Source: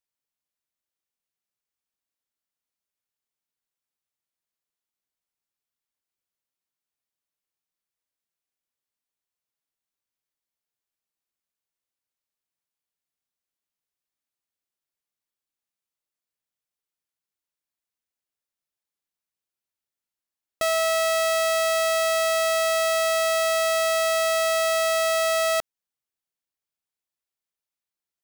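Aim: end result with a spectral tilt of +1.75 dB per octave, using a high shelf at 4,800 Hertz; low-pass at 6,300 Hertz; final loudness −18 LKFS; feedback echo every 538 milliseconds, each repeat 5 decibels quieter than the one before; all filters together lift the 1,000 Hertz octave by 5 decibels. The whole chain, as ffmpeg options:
ffmpeg -i in.wav -af "lowpass=6300,equalizer=frequency=1000:width_type=o:gain=8,highshelf=frequency=4800:gain=3.5,aecho=1:1:538|1076|1614|2152|2690|3228|3766:0.562|0.315|0.176|0.0988|0.0553|0.031|0.0173,volume=2.5dB" out.wav

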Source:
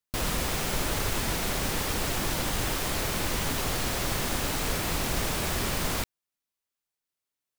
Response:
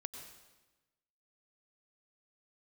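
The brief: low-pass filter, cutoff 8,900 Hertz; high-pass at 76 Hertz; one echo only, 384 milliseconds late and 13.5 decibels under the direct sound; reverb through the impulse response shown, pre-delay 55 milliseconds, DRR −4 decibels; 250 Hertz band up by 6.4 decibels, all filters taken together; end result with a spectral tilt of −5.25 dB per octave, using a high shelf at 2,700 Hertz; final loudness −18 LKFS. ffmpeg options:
-filter_complex "[0:a]highpass=76,lowpass=8900,equalizer=frequency=250:width_type=o:gain=8.5,highshelf=frequency=2700:gain=-8.5,aecho=1:1:384:0.211,asplit=2[link_01][link_02];[1:a]atrim=start_sample=2205,adelay=55[link_03];[link_02][link_03]afir=irnorm=-1:irlink=0,volume=6.5dB[link_04];[link_01][link_04]amix=inputs=2:normalize=0,volume=6.5dB"

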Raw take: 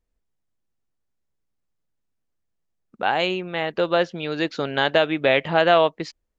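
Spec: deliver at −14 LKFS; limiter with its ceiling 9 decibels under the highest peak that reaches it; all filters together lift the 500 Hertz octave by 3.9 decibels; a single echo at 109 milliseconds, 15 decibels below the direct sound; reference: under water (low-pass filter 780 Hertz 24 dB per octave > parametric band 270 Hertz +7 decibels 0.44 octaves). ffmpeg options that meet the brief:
ffmpeg -i in.wav -af "equalizer=frequency=500:width_type=o:gain=5,alimiter=limit=-10.5dB:level=0:latency=1,lowpass=frequency=780:width=0.5412,lowpass=frequency=780:width=1.3066,equalizer=frequency=270:width_type=o:width=0.44:gain=7,aecho=1:1:109:0.178,volume=9dB" out.wav

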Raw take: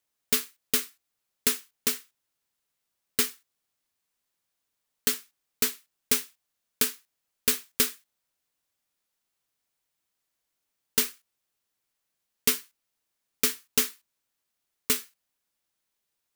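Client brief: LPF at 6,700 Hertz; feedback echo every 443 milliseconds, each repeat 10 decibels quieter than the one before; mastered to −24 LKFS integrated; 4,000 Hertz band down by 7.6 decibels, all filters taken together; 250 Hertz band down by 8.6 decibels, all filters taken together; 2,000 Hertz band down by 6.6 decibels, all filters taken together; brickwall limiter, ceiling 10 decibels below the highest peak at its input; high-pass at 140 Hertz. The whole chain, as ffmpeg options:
ffmpeg -i in.wav -af "highpass=140,lowpass=6700,equalizer=frequency=250:width_type=o:gain=-8.5,equalizer=frequency=2000:width_type=o:gain=-6,equalizer=frequency=4000:width_type=o:gain=-7.5,alimiter=level_in=0.5dB:limit=-24dB:level=0:latency=1,volume=-0.5dB,aecho=1:1:443|886|1329|1772:0.316|0.101|0.0324|0.0104,volume=19.5dB" out.wav

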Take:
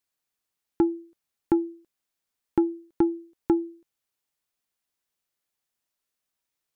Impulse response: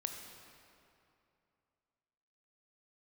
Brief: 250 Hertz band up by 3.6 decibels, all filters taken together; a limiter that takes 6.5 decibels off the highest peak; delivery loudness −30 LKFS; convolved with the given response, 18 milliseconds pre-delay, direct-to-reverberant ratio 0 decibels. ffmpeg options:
-filter_complex "[0:a]equalizer=frequency=250:width_type=o:gain=6,alimiter=limit=-13.5dB:level=0:latency=1,asplit=2[link_01][link_02];[1:a]atrim=start_sample=2205,adelay=18[link_03];[link_02][link_03]afir=irnorm=-1:irlink=0,volume=0.5dB[link_04];[link_01][link_04]amix=inputs=2:normalize=0,volume=-8.5dB"

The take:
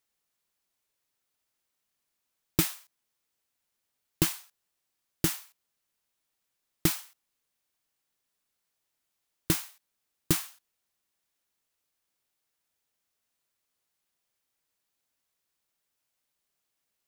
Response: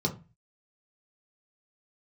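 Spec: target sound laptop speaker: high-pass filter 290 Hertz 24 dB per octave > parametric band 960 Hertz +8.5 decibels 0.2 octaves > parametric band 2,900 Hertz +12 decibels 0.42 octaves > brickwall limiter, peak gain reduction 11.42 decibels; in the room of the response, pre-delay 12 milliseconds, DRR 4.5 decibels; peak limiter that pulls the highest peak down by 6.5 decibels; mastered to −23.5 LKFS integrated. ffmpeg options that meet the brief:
-filter_complex "[0:a]alimiter=limit=-14.5dB:level=0:latency=1,asplit=2[link_01][link_02];[1:a]atrim=start_sample=2205,adelay=12[link_03];[link_02][link_03]afir=irnorm=-1:irlink=0,volume=-11.5dB[link_04];[link_01][link_04]amix=inputs=2:normalize=0,highpass=frequency=290:width=0.5412,highpass=frequency=290:width=1.3066,equalizer=frequency=960:width_type=o:width=0.2:gain=8.5,equalizer=frequency=2900:width_type=o:width=0.42:gain=12,volume=16dB,alimiter=limit=-10dB:level=0:latency=1"

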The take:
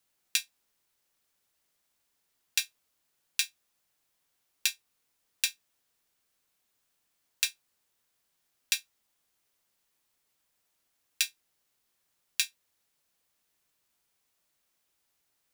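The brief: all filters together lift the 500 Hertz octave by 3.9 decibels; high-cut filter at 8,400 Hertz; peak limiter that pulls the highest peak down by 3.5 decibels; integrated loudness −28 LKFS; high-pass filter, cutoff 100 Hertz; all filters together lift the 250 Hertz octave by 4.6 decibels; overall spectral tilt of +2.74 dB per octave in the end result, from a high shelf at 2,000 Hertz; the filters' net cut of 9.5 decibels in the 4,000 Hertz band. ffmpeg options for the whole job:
ffmpeg -i in.wav -af "highpass=100,lowpass=8400,equalizer=frequency=250:width_type=o:gain=5,equalizer=frequency=500:width_type=o:gain=4,highshelf=frequency=2000:gain=-6,equalizer=frequency=4000:width_type=o:gain=-5.5,volume=15.5dB,alimiter=limit=-4dB:level=0:latency=1" out.wav

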